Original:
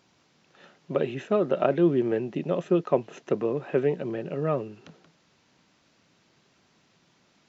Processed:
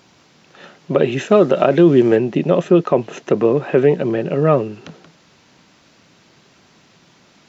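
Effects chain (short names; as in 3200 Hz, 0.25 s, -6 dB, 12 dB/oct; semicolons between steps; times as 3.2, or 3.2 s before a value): 1.12–2.16 high shelf 5000 Hz +11 dB; maximiser +13.5 dB; gain -1 dB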